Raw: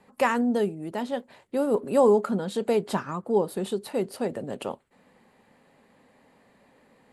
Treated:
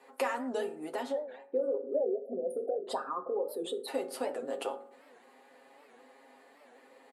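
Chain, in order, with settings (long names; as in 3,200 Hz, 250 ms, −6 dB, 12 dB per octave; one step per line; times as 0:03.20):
0:01.12–0:03.88: spectral envelope exaggerated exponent 2
high-pass filter 320 Hz 24 dB per octave
0:01.79–0:02.87: time-frequency box erased 790–9,100 Hz
dynamic equaliser 410 Hz, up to −6 dB, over −35 dBFS, Q 4.2
comb filter 7.4 ms, depth 64%
downward compressor 2.5 to 1, threshold −35 dBFS, peak gain reduction 14 dB
convolution reverb RT60 0.60 s, pre-delay 3 ms, DRR 6 dB
wow of a warped record 78 rpm, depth 160 cents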